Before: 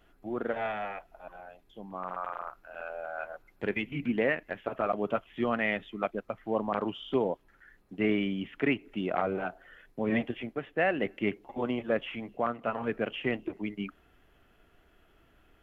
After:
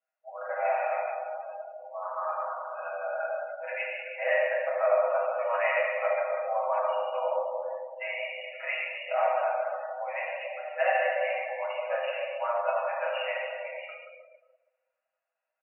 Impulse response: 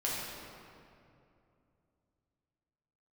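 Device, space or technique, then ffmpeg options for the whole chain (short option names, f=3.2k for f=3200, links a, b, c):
cave: -filter_complex "[0:a]aecho=1:1:6.3:0.58,aecho=1:1:189:0.178[a];[1:a]atrim=start_sample=2205[b];[a][b]afir=irnorm=-1:irlink=0,afftdn=nr=24:nf=-39,afftfilt=real='re*between(b*sr/4096,500,2900)':imag='im*between(b*sr/4096,500,2900)':win_size=4096:overlap=0.75,equalizer=f=1.6k:w=0.98:g=-4.5"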